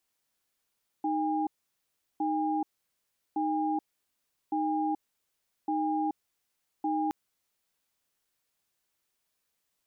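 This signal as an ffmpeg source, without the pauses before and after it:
-f lavfi -i "aevalsrc='0.0355*(sin(2*PI*310*t)+sin(2*PI*810*t))*clip(min(mod(t,1.16),0.43-mod(t,1.16))/0.005,0,1)':d=6.07:s=44100"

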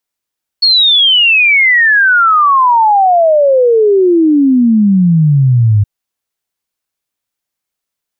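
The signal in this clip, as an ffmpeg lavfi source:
-f lavfi -i "aevalsrc='0.562*clip(min(t,5.22-t)/0.01,0,1)*sin(2*PI*4400*5.22/log(100/4400)*(exp(log(100/4400)*t/5.22)-1))':d=5.22:s=44100"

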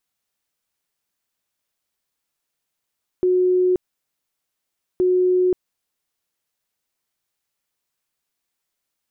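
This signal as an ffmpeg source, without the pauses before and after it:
-f lavfi -i "aevalsrc='0.2*sin(2*PI*365*mod(t,1.77))*lt(mod(t,1.77),193/365)':d=3.54:s=44100"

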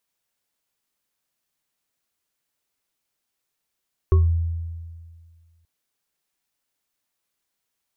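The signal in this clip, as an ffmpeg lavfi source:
-f lavfi -i "aevalsrc='0.282*pow(10,-3*t/1.89)*sin(2*PI*83.3*t)+0.126*pow(10,-3*t/0.22)*sin(2*PI*379*t)+0.0355*pow(10,-3*t/0.25)*sin(2*PI*1100*t)':d=1.53:s=44100"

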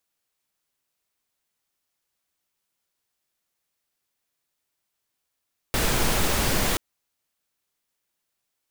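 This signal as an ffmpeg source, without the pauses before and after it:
-f lavfi -i "anoisesrc=c=pink:a=0.385:d=1.03:r=44100:seed=1"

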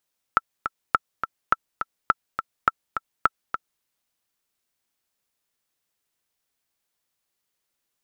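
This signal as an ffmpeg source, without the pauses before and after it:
-f lavfi -i "aevalsrc='pow(10,(-3.5-8.5*gte(mod(t,2*60/208),60/208))/20)*sin(2*PI*1330*mod(t,60/208))*exp(-6.91*mod(t,60/208)/0.03)':d=3.46:s=44100"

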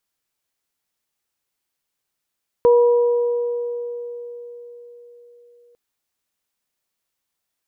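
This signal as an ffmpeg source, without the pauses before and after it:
-f lavfi -i "aevalsrc='0.355*pow(10,-3*t/4.46)*sin(2*PI*479*t)+0.0891*pow(10,-3*t/2.36)*sin(2*PI*969*t)':d=3.1:s=44100"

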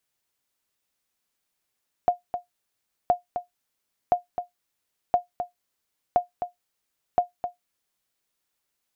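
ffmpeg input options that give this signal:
-f lavfi -i "aevalsrc='0.299*(sin(2*PI*711*mod(t,1.02))*exp(-6.91*mod(t,1.02)/0.14)+0.355*sin(2*PI*711*max(mod(t,1.02)-0.26,0))*exp(-6.91*max(mod(t,1.02)-0.26,0)/0.14))':d=6.12:s=44100"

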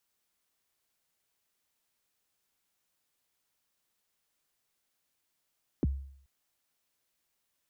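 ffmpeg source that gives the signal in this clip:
-f lavfi -i "aevalsrc='0.0794*pow(10,-3*t/0.62)*sin(2*PI*(400*0.027/log(68/400)*(exp(log(68/400)*min(t,0.027)/0.027)-1)+68*max(t-0.027,0)))':d=0.43:s=44100"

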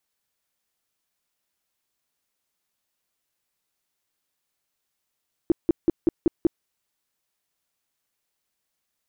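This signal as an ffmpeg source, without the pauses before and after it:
-f lavfi -i "aevalsrc='0.211*sin(2*PI*334*mod(t,0.19))*lt(mod(t,0.19),6/334)':d=1.14:s=44100"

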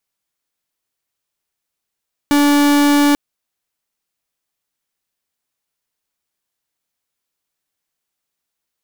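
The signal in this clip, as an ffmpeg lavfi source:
-f lavfi -i "aevalsrc='0.251*(2*lt(mod(289*t,1),0.44)-1)':d=0.84:s=44100"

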